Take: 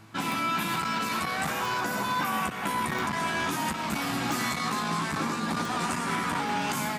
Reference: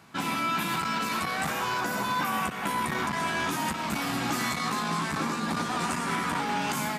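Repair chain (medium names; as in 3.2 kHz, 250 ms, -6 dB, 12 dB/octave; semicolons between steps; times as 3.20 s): de-click; de-hum 108.2 Hz, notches 3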